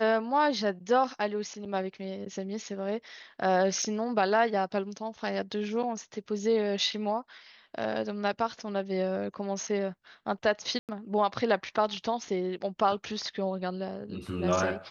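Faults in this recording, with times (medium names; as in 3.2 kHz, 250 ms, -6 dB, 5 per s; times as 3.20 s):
1.65–1.66 s: dropout 5 ms
3.82 s: dropout 4.7 ms
10.79–10.89 s: dropout 98 ms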